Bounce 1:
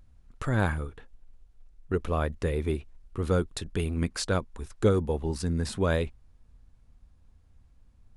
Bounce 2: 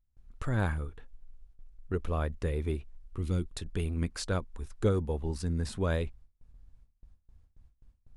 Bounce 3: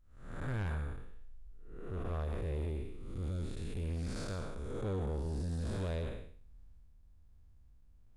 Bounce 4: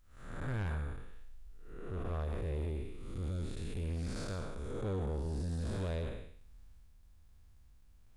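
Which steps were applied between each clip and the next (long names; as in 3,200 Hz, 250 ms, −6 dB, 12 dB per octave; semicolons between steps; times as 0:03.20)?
noise gate with hold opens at −47 dBFS; gain on a spectral selection 0:03.19–0:03.44, 380–1,900 Hz −10 dB; low-shelf EQ 77 Hz +8.5 dB; level −5.5 dB
spectrum smeared in time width 317 ms; soft clipping −33 dBFS, distortion −11 dB; level +1.5 dB
one half of a high-frequency compander encoder only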